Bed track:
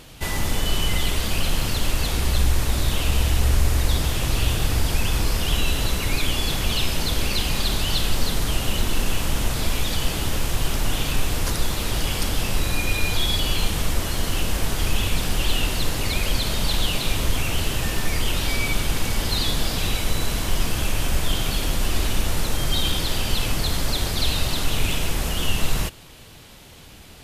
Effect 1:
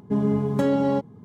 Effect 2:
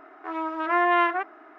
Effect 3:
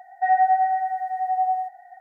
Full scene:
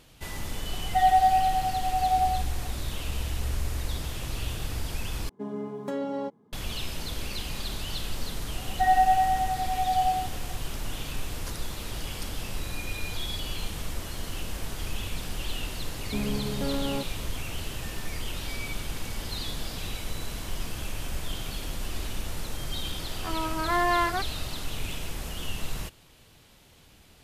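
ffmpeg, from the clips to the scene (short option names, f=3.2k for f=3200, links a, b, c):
-filter_complex "[3:a]asplit=2[a][b];[1:a]asplit=2[c][d];[0:a]volume=-11dB[e];[a]lowpass=1.6k[f];[c]highpass=280[g];[d]asoftclip=type=tanh:threshold=-19dB[h];[2:a]asoftclip=type=tanh:threshold=-12.5dB[i];[e]asplit=2[j][k];[j]atrim=end=5.294[l];[g]atrim=end=1.24,asetpts=PTS-STARTPTS,volume=-8dB[m];[k]atrim=start=6.526[n];[f]atrim=end=2,asetpts=PTS-STARTPTS,volume=-1.5dB,afade=t=in:d=0.004:c=hsin,afade=t=out:st=1.996:d=0.004:c=hsin,adelay=730[o];[b]atrim=end=2,asetpts=PTS-STARTPTS,volume=-2.5dB,afade=t=in:d=0.004:c=hsin,afade=t=out:st=1.996:d=0.004:c=hsin,adelay=378378S[p];[h]atrim=end=1.24,asetpts=PTS-STARTPTS,volume=-6.5dB,afade=t=in:d=0.004:c=hsin,afade=t=out:st=1.236:d=0.004:c=hsin,adelay=16020[q];[i]atrim=end=1.58,asetpts=PTS-STARTPTS,volume=-2dB,afade=t=in:d=0.004:c=hsin,afade=t=out:st=1.576:d=0.004:c=hsin,adelay=22990[r];[l][m]acrossfade=d=0.004:c1=hsin:c2=hsin[s];[s][n]acrossfade=d=0.004:c1=hsin:c2=hsin[t];[t][o][p][q][r]amix=inputs=5:normalize=0"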